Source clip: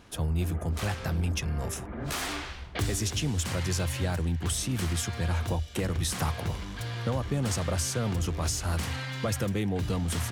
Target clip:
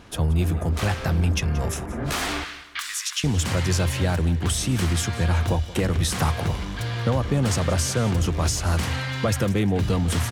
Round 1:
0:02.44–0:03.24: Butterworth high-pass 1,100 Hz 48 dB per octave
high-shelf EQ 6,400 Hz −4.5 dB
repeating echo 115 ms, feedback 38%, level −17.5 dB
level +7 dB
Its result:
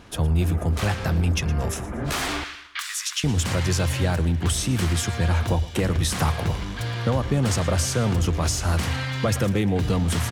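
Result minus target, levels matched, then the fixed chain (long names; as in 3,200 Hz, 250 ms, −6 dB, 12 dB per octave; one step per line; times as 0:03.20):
echo 63 ms early
0:02.44–0:03.24: Butterworth high-pass 1,100 Hz 48 dB per octave
high-shelf EQ 6,400 Hz −4.5 dB
repeating echo 178 ms, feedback 38%, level −17.5 dB
level +7 dB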